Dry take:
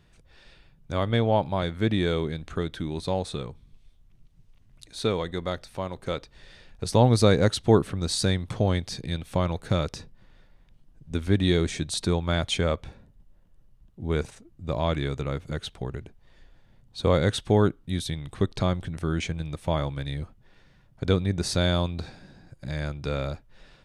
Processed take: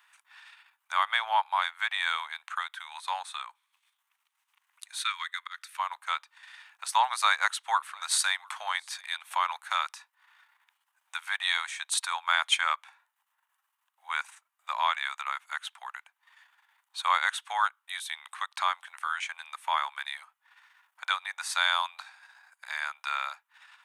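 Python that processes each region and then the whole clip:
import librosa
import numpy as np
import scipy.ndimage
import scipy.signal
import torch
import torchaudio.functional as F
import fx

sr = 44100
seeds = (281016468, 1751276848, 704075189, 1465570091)

y = fx.chain(x, sr, fx.highpass(hz=1300.0, slope=24),
    fx.auto_swell(attack_ms=153.0), at=(4.98, 5.79))
y = fx.chain(y, sr, fx.peak_eq(hz=120.0, db=-15.0, octaves=1.3),
    fx.echo_single(ms=702, db=-22.5), at=(7.0, 9.48))
y = fx.peak_eq(y, sr, hz=4800.0, db=-10.5, octaves=1.1)
y = fx.transient(y, sr, attack_db=1, sustain_db=-7)
y = scipy.signal.sosfilt(scipy.signal.butter(8, 910.0, 'highpass', fs=sr, output='sos'), y)
y = F.gain(torch.from_numpy(y), 8.5).numpy()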